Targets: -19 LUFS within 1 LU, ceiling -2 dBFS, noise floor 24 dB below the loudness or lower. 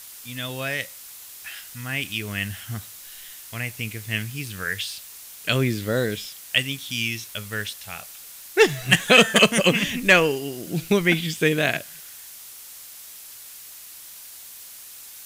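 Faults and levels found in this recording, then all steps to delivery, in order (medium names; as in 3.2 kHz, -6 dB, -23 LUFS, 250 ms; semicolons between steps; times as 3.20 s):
noise floor -42 dBFS; noise floor target -46 dBFS; loudness -22.0 LUFS; peak level -4.0 dBFS; loudness target -19.0 LUFS
-> noise reduction 6 dB, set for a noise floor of -42 dBFS; trim +3 dB; peak limiter -2 dBFS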